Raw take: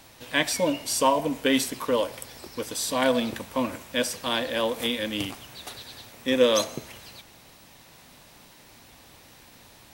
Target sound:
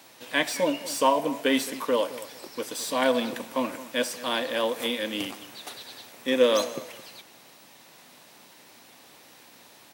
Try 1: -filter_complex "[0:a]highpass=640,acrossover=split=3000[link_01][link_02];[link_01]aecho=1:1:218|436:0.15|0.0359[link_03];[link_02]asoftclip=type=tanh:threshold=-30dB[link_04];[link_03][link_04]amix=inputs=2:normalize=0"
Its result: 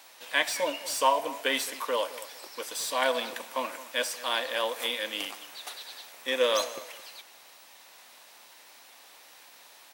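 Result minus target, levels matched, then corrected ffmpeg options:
250 Hz band −10.5 dB
-filter_complex "[0:a]highpass=220,acrossover=split=3000[link_01][link_02];[link_01]aecho=1:1:218|436:0.15|0.0359[link_03];[link_02]asoftclip=type=tanh:threshold=-30dB[link_04];[link_03][link_04]amix=inputs=2:normalize=0"

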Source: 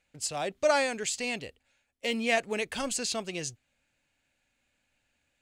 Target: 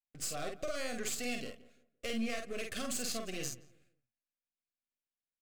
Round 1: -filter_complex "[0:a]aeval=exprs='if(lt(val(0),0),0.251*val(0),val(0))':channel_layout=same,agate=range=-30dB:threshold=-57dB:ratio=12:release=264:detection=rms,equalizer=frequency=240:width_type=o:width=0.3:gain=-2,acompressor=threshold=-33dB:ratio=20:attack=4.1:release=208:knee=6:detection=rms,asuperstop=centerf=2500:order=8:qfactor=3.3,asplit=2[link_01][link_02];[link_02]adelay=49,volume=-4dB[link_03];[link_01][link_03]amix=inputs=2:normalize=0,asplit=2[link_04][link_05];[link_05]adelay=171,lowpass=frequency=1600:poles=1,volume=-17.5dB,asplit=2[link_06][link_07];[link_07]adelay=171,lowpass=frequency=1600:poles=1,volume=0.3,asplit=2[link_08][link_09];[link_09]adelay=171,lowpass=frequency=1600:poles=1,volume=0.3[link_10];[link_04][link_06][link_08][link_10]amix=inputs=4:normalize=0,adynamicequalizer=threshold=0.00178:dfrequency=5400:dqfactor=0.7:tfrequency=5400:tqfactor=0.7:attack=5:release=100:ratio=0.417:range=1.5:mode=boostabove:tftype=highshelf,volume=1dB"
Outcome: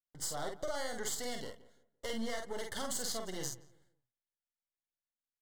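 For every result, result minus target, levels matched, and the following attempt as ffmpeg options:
250 Hz band −3.0 dB; 2,000 Hz band −2.0 dB
-filter_complex "[0:a]aeval=exprs='if(lt(val(0),0),0.251*val(0),val(0))':channel_layout=same,agate=range=-30dB:threshold=-57dB:ratio=12:release=264:detection=rms,equalizer=frequency=240:width_type=o:width=0.3:gain=5.5,acompressor=threshold=-33dB:ratio=20:attack=4.1:release=208:knee=6:detection=rms,asuperstop=centerf=2500:order=8:qfactor=3.3,asplit=2[link_01][link_02];[link_02]adelay=49,volume=-4dB[link_03];[link_01][link_03]amix=inputs=2:normalize=0,asplit=2[link_04][link_05];[link_05]adelay=171,lowpass=frequency=1600:poles=1,volume=-17.5dB,asplit=2[link_06][link_07];[link_07]adelay=171,lowpass=frequency=1600:poles=1,volume=0.3,asplit=2[link_08][link_09];[link_09]adelay=171,lowpass=frequency=1600:poles=1,volume=0.3[link_10];[link_04][link_06][link_08][link_10]amix=inputs=4:normalize=0,adynamicequalizer=threshold=0.00178:dfrequency=5400:dqfactor=0.7:tfrequency=5400:tqfactor=0.7:attack=5:release=100:ratio=0.417:range=1.5:mode=boostabove:tftype=highshelf,volume=1dB"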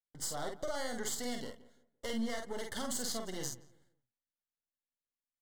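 2,000 Hz band −3.0 dB
-filter_complex "[0:a]aeval=exprs='if(lt(val(0),0),0.251*val(0),val(0))':channel_layout=same,agate=range=-30dB:threshold=-57dB:ratio=12:release=264:detection=rms,equalizer=frequency=240:width_type=o:width=0.3:gain=5.5,acompressor=threshold=-33dB:ratio=20:attack=4.1:release=208:knee=6:detection=rms,asuperstop=centerf=910:order=8:qfactor=3.3,asplit=2[link_01][link_02];[link_02]adelay=49,volume=-4dB[link_03];[link_01][link_03]amix=inputs=2:normalize=0,asplit=2[link_04][link_05];[link_05]adelay=171,lowpass=frequency=1600:poles=1,volume=-17.5dB,asplit=2[link_06][link_07];[link_07]adelay=171,lowpass=frequency=1600:poles=1,volume=0.3,asplit=2[link_08][link_09];[link_09]adelay=171,lowpass=frequency=1600:poles=1,volume=0.3[link_10];[link_04][link_06][link_08][link_10]amix=inputs=4:normalize=0,adynamicequalizer=threshold=0.00178:dfrequency=5400:dqfactor=0.7:tfrequency=5400:tqfactor=0.7:attack=5:release=100:ratio=0.417:range=1.5:mode=boostabove:tftype=highshelf,volume=1dB"

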